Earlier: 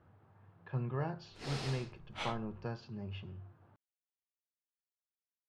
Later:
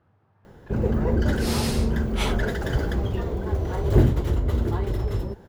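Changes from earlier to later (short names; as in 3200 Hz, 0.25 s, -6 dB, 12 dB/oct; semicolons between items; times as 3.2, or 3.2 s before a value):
first sound: unmuted; second sound +9.5 dB; master: remove air absorption 100 m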